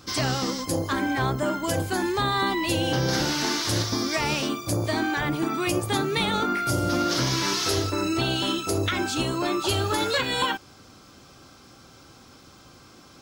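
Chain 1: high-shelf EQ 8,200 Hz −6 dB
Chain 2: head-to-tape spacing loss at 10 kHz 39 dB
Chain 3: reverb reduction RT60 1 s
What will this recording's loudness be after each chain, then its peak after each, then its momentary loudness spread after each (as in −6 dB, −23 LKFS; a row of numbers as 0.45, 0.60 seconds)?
−25.5, −28.5, −26.5 LKFS; −12.0, −14.5, −13.0 dBFS; 3, 3, 3 LU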